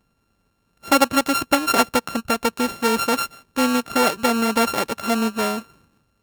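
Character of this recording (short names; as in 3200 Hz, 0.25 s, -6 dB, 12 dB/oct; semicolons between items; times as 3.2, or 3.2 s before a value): a buzz of ramps at a fixed pitch in blocks of 32 samples; AAC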